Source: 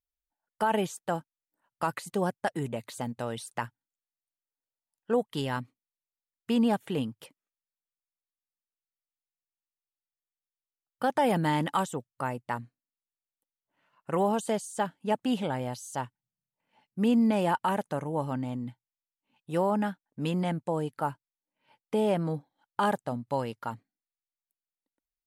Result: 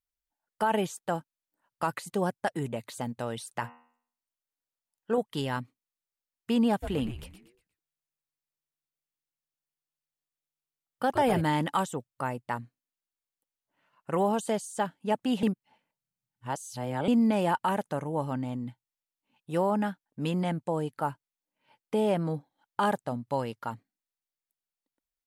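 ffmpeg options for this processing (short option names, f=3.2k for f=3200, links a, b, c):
-filter_complex "[0:a]asettb=1/sr,asplit=3[a][b][c];[a]atrim=end=3.514[d];[b]atrim=start=3.51:end=5.18,asetpts=PTS-STARTPTS,afade=t=in:d=0.004:c=qsin,afade=t=out:st=1.666:d=0.004:c=qsin,bandreject=f=80.2:t=h:w=4,bandreject=f=160.4:t=h:w=4,bandreject=f=240.6:t=h:w=4,bandreject=f=320.8:t=h:w=4,bandreject=f=401:t=h:w=4,bandreject=f=481.2:t=h:w=4,bandreject=f=561.4:t=h:w=4,bandreject=f=641.6:t=h:w=4,bandreject=f=721.8:t=h:w=4,bandreject=f=802:t=h:w=4,bandreject=f=882.2:t=h:w=4,bandreject=f=962.4:t=h:w=4,bandreject=f=1.0426k:t=h:w=4,bandreject=f=1.1228k:t=h:w=4,bandreject=f=1.203k:t=h:w=4,bandreject=f=1.2832k:t=h:w=4,bandreject=f=1.3634k:t=h:w=4,bandreject=f=1.4436k:t=h:w=4,bandreject=f=1.5238k:t=h:w=4,bandreject=f=1.604k:t=h:w=4,bandreject=f=1.6842k:t=h:w=4,bandreject=f=1.7644k:t=h:w=4,bandreject=f=1.8446k:t=h:w=4,bandreject=f=1.9248k:t=h:w=4,bandreject=f=2.005k:t=h:w=4,bandreject=f=2.0852k:t=h:w=4,bandreject=f=2.1654k:t=h:w=4,bandreject=f=2.2456k:t=h:w=4,bandreject=f=2.3258k:t=h:w=4,bandreject=f=2.406k:t=h:w=4,bandreject=f=2.4862k:t=h:w=4,bandreject=f=2.5664k:t=h:w=4,bandreject=f=2.6466k:t=h:w=4,bandreject=f=2.7268k:t=h:w=4,bandreject=f=2.807k:t=h:w=4,bandreject=f=2.8872k:t=h:w=4,bandreject=f=2.9674k:t=h:w=4[e];[c]atrim=start=5.176[f];[d][e]acrossfade=d=0.004:c1=hsin:c2=qsin[g];[g][f]acrossfade=d=0.004:c1=qsin:c2=hsin,asplit=3[h][i][j];[h]afade=t=out:st=6.82:d=0.02[k];[i]asplit=5[l][m][n][o][p];[m]adelay=119,afreqshift=-150,volume=-9dB[q];[n]adelay=238,afreqshift=-300,volume=-17.6dB[r];[o]adelay=357,afreqshift=-450,volume=-26.3dB[s];[p]adelay=476,afreqshift=-600,volume=-34.9dB[t];[l][q][r][s][t]amix=inputs=5:normalize=0,afade=t=in:st=6.82:d=0.02,afade=t=out:st=11.4:d=0.02[u];[j]afade=t=in:st=11.4:d=0.02[v];[k][u][v]amix=inputs=3:normalize=0,asplit=3[w][x][y];[w]atrim=end=15.432[z];[x]atrim=start=15.428:end=17.082,asetpts=PTS-STARTPTS,areverse[aa];[y]atrim=start=17.078[ab];[z][aa]acrossfade=d=0.004:c1=hsin:c2=hsin[ac];[ac][ab]acrossfade=d=0.004:c1=hsin:c2=hsin"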